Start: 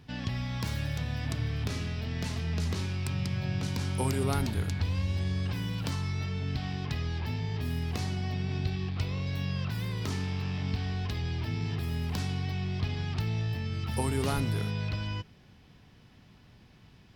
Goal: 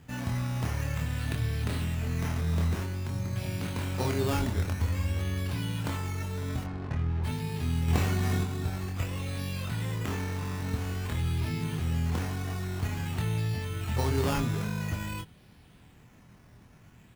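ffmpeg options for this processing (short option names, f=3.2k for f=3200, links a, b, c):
-filter_complex "[0:a]asettb=1/sr,asplit=3[a][b][c];[a]atrim=end=2.844[d];[b]atrim=start=2.84:end=3.36,asetpts=PTS-STARTPTS,afade=t=in:d=0.004:c=qsin,afade=t=out:st=0.516:d=0.004:c=qsin,lowpass=f=2k:w=0.5412,lowpass=f=2k:w=1.3066[e];[c]atrim=start=3.356[f];[d][e]acrossfade=d=0.004:c1=hsin:c2=qsin[g];[g][f]acrossfade=d=0.004:c1=qsin:c2=hsin,asettb=1/sr,asplit=3[h][i][j];[h]atrim=end=7.884[k];[i]atrim=start=7.88:end=8.44,asetpts=PTS-STARTPTS,afade=t=in:d=0.004:c=qsin,afade=t=out:st=0.556:d=0.004:c=qsin,acontrast=39[l];[j]atrim=start=8.436[m];[k][l]acrossfade=d=0.004:c1=hsin:c2=qsin[n];[n][m]acrossfade=d=0.004:c1=qsin:c2=hsin,acrusher=samples=9:mix=1:aa=0.000001:lfo=1:lforange=5.4:lforate=0.5,asplit=3[o][p][q];[o]afade=t=out:st=6.63:d=0.02[r];[p]adynamicsmooth=sensitivity=6.5:basefreq=700,afade=t=in:st=6.63:d=0.02,afade=t=out:st=7.23:d=0.02[s];[q]afade=t=in:st=7.23:d=0.02[t];[r][s][t]amix=inputs=3:normalize=0,asplit=2[u][v];[v]adelay=25,volume=-4.5dB[w];[u][w]amix=inputs=2:normalize=0"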